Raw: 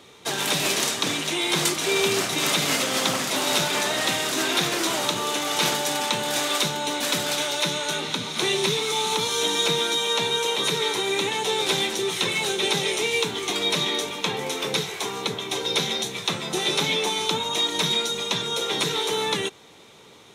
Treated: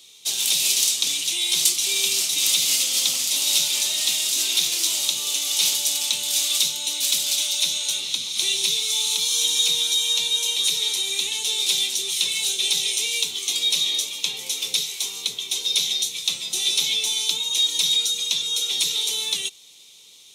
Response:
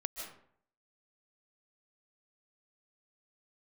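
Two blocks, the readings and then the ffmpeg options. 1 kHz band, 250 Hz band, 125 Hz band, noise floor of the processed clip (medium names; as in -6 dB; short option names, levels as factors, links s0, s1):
-17.5 dB, under -15 dB, under -15 dB, -48 dBFS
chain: -af "aexciter=amount=11:drive=6.7:freq=2500,volume=0.133"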